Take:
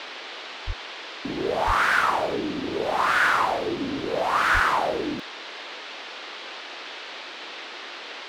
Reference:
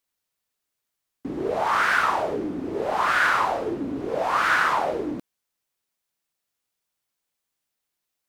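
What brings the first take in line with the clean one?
de-plosive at 0.66/1.66/4.53 s; noise print and reduce 30 dB

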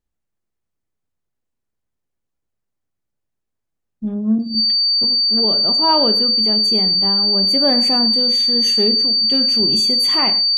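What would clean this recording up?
band-stop 4.6 kHz, Q 30; inverse comb 108 ms -18 dB

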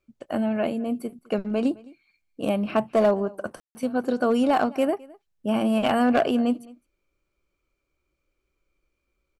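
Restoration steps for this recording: clip repair -13.5 dBFS; room tone fill 3.60–3.75 s; inverse comb 212 ms -23 dB

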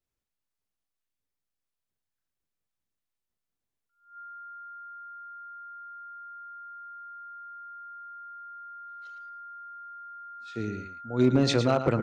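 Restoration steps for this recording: clip repair -13.5 dBFS; band-stop 1.4 kHz, Q 30; inverse comb 111 ms -10 dB

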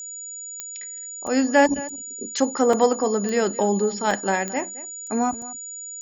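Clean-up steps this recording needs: de-click; band-stop 6.9 kHz, Q 30; interpolate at 1.27/1.89/2.73/4.11/5.07/5.42 s, 3.2 ms; inverse comb 217 ms -17.5 dB

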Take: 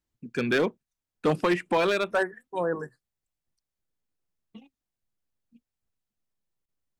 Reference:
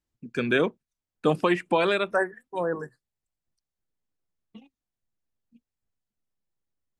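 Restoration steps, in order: clip repair -17 dBFS; interpolate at 6.66 s, 24 ms

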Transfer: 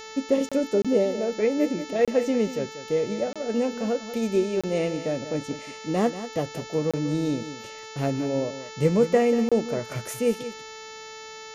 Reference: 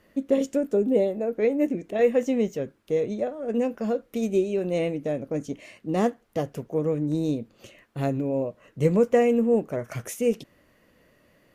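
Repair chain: de-hum 440 Hz, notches 16; interpolate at 0.49/0.82/2.05/3.33/4.61/6.91/9.49 s, 26 ms; inverse comb 187 ms -12.5 dB

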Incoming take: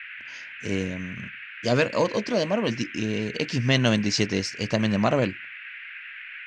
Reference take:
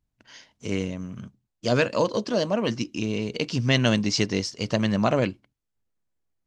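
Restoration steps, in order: noise print and reduce 30 dB

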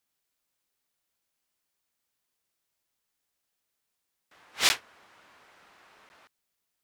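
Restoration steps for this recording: interpolate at 4.69/6.09 s, 10 ms

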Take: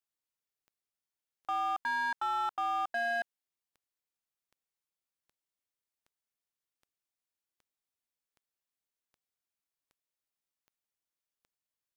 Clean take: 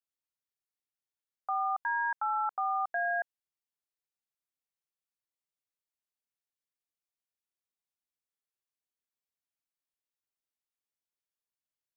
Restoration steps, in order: clip repair -28 dBFS; de-click

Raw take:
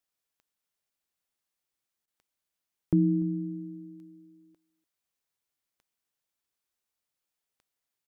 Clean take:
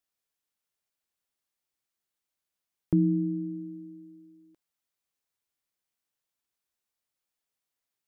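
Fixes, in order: de-click; interpolate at 2.06 s, 15 ms; inverse comb 293 ms -22.5 dB

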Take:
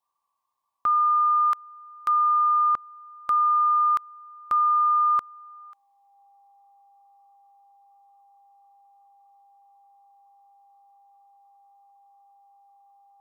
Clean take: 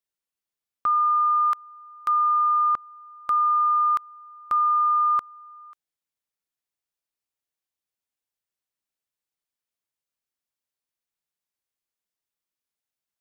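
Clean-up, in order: band-stop 800 Hz, Q 30; noise print and reduce 30 dB

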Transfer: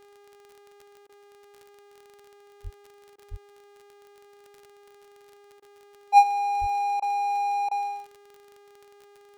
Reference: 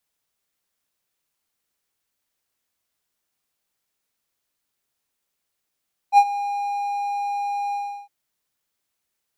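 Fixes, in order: de-click; de-hum 406.6 Hz, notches 24; de-plosive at 2.63/3.30/6.60 s; interpolate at 1.07/3.16/5.60/7.00/7.69 s, 21 ms

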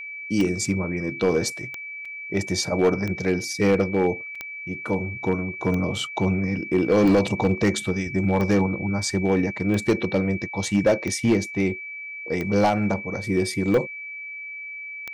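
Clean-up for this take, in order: clip repair -12.5 dBFS; de-click; band-stop 2.3 kHz, Q 30; interpolate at 2.05/4.35 s, 4.7 ms

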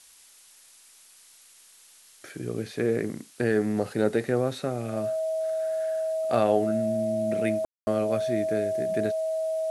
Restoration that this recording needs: band-stop 640 Hz, Q 30; room tone fill 7.65–7.87 s; noise reduction 18 dB, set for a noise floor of -55 dBFS

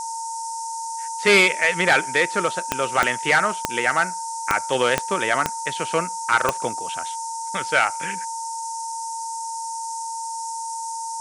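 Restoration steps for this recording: de-click; band-stop 910 Hz, Q 30; noise print and reduce 30 dB

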